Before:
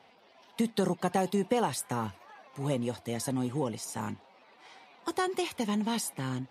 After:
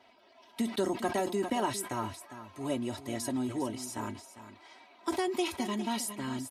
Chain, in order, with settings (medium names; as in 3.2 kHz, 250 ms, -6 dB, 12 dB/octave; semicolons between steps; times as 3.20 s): comb 3.1 ms, depth 82%; delay 404 ms -12.5 dB; decay stretcher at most 130 dB/s; trim -3.5 dB